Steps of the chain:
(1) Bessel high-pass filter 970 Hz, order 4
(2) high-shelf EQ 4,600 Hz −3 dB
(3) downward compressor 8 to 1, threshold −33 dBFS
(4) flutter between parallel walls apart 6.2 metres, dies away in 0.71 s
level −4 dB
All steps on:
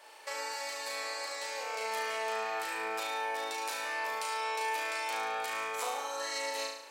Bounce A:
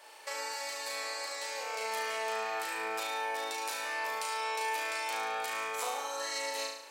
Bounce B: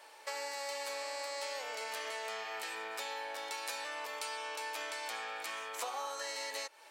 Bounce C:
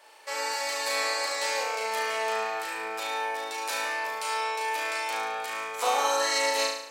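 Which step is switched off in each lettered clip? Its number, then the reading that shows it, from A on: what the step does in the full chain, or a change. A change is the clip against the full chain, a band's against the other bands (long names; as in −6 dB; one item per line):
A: 2, 8 kHz band +2.0 dB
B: 4, change in momentary loudness spread −2 LU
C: 3, average gain reduction 5.5 dB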